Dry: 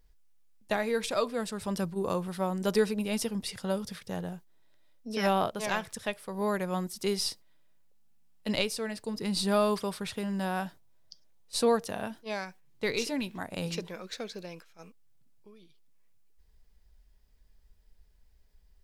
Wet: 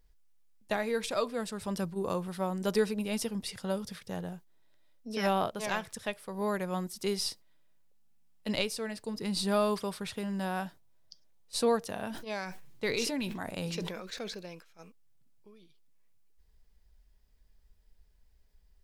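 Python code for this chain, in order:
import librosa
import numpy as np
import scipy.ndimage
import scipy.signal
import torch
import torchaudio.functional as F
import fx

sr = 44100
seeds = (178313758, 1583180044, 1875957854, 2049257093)

y = fx.sustainer(x, sr, db_per_s=41.0, at=(12.06, 14.34), fade=0.02)
y = y * 10.0 ** (-2.0 / 20.0)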